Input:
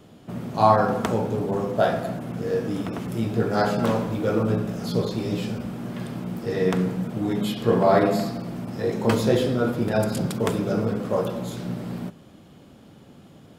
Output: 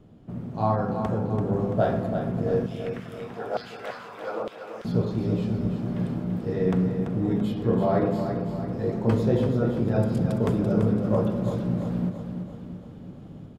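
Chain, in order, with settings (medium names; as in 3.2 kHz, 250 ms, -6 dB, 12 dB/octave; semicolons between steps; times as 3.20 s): tilt EQ -3 dB/octave; level rider gain up to 6.5 dB; 2.66–4.85 s: LFO high-pass saw down 1.1 Hz 600–3300 Hz; feedback delay 337 ms, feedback 52%, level -7.5 dB; trim -9 dB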